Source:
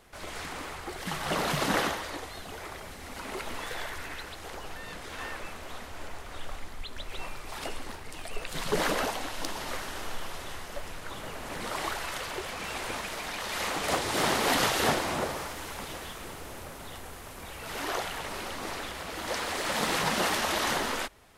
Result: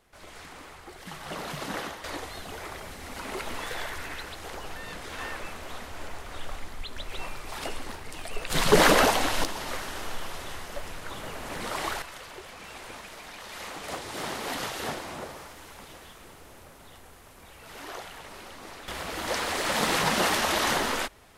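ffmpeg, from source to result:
-af "asetnsamples=n=441:p=0,asendcmd='2.04 volume volume 2dB;8.5 volume volume 9.5dB;9.44 volume volume 1.5dB;12.02 volume volume -7.5dB;18.88 volume volume 3dB',volume=-7dB"

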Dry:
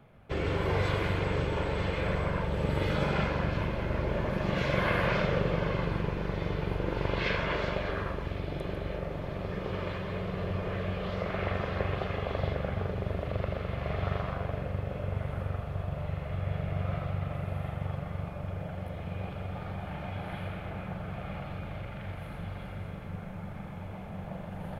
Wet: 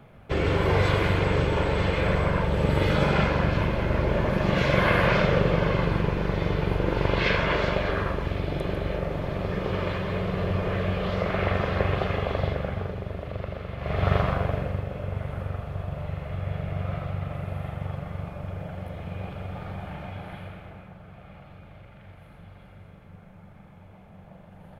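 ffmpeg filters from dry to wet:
-af "volume=17.5dB,afade=t=out:st=12.1:d=0.96:silence=0.421697,afade=t=in:st=13.78:d=0.38:silence=0.281838,afade=t=out:st=14.16:d=0.73:silence=0.398107,afade=t=out:st=19.81:d=1.11:silence=0.298538"

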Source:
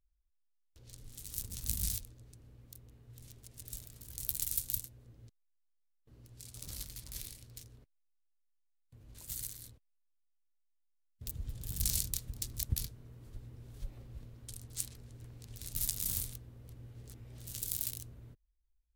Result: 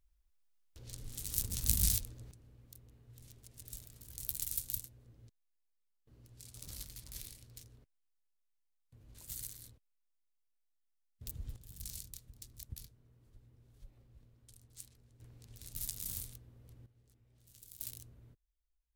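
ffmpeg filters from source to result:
-af "asetnsamples=n=441:p=0,asendcmd='2.31 volume volume -3dB;11.56 volume volume -13dB;15.2 volume volume -6dB;16.86 volume volume -18dB;17.8 volume volume -6.5dB',volume=5dB"

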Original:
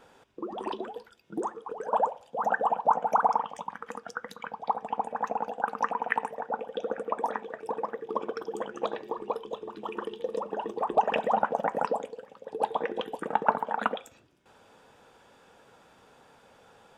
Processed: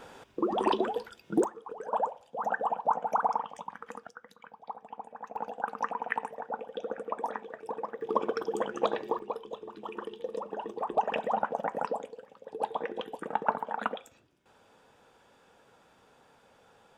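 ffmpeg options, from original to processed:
-af "asetnsamples=n=441:p=0,asendcmd='1.44 volume volume -4dB;4.07 volume volume -12.5dB;5.36 volume volume -4dB;8.01 volume volume 3dB;9.19 volume volume -4dB',volume=7.5dB"

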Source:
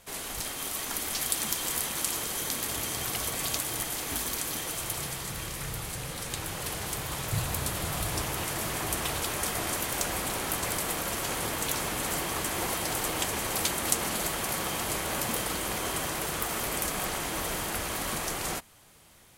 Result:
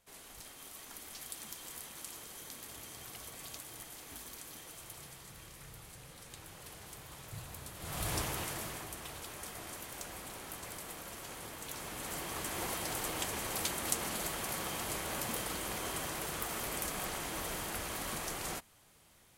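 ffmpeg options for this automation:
-af "volume=4dB,afade=t=in:st=7.78:d=0.34:silence=0.237137,afade=t=out:st=8.12:d=0.79:silence=0.281838,afade=t=in:st=11.62:d=1:silence=0.421697"

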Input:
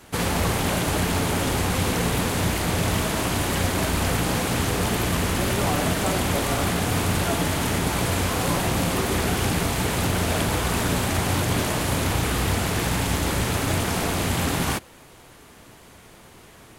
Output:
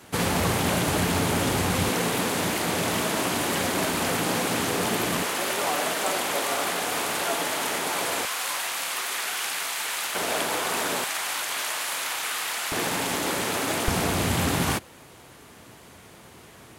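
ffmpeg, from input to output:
-af "asetnsamples=n=441:p=0,asendcmd='1.89 highpass f 210;5.23 highpass f 470;8.25 highpass f 1200;10.15 highpass f 430;11.04 highpass f 1100;12.72 highpass f 280;13.88 highpass f 71',highpass=94"

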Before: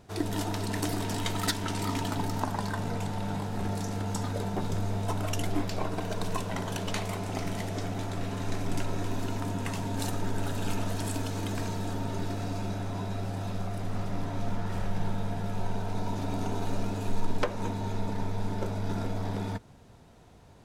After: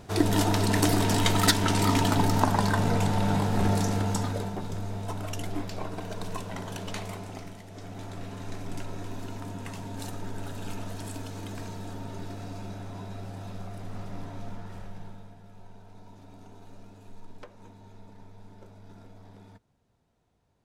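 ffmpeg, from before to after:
-af "volume=15.5dB,afade=t=out:st=3.75:d=0.84:silence=0.281838,afade=t=out:st=7.08:d=0.55:silence=0.316228,afade=t=in:st=7.63:d=0.43:silence=0.398107,afade=t=out:st=14.22:d=1.15:silence=0.237137"

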